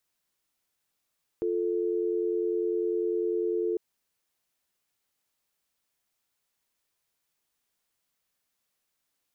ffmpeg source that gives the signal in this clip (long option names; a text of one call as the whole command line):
ffmpeg -f lavfi -i "aevalsrc='0.0398*(sin(2*PI*350*t)+sin(2*PI*440*t))':duration=2.35:sample_rate=44100" out.wav